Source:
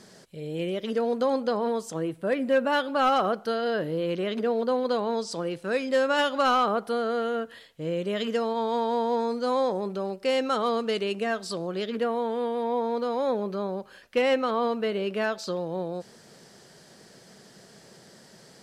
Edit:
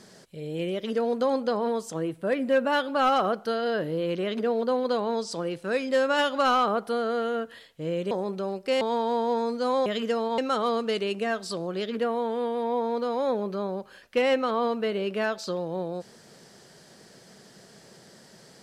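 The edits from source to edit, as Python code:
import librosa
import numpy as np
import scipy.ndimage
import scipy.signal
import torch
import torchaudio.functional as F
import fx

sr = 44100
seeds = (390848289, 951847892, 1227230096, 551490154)

y = fx.edit(x, sr, fx.swap(start_s=8.11, length_s=0.52, other_s=9.68, other_length_s=0.7), tone=tone)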